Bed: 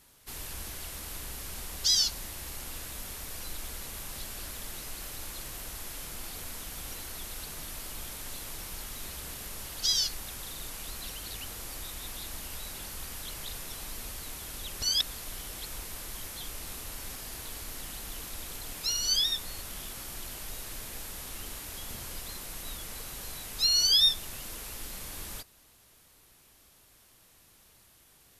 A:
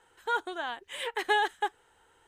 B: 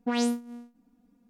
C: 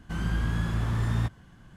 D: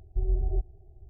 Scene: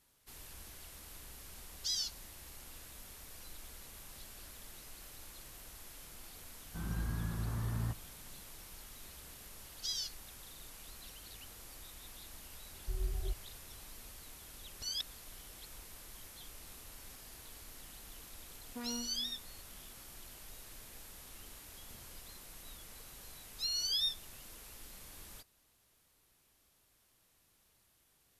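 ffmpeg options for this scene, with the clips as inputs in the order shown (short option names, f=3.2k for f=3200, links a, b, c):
-filter_complex "[0:a]volume=-11.5dB[a];[3:a]lowpass=1.7k[b];[2:a]asoftclip=type=tanh:threshold=-25.5dB[c];[b]atrim=end=1.76,asetpts=PTS-STARTPTS,volume=-10dB,afade=t=in:d=0.004:c=hsin,afade=t=out:st=1.756:d=0.004:c=hsin,adelay=6650[d];[4:a]atrim=end=1.09,asetpts=PTS-STARTPTS,volume=-10.5dB,afade=t=in:d=0.004:c=hsin,afade=t=out:st=1.086:d=0.004:c=hsin,adelay=12720[e];[c]atrim=end=1.29,asetpts=PTS-STARTPTS,volume=-13dB,afade=t=in:d=0.004:c=hsin,afade=t=out:st=1.286:d=0.004:c=hsin,adelay=18690[f];[a][d][e][f]amix=inputs=4:normalize=0"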